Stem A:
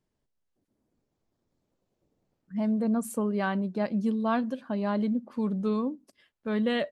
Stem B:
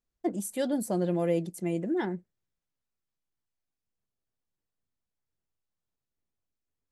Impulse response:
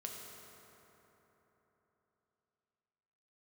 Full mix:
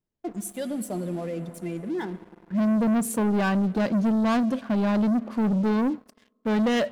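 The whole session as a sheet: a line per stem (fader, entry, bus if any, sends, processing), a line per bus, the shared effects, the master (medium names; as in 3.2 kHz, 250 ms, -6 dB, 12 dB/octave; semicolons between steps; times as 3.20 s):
-3.5 dB, 0.00 s, send -22.5 dB, bass shelf 410 Hz +3.5 dB
-11.0 dB, 0.00 s, send -4.5 dB, expander on every frequency bin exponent 1.5; peak limiter -25.5 dBFS, peak gain reduction 7.5 dB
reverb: on, RT60 3.8 s, pre-delay 4 ms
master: waveshaping leveller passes 3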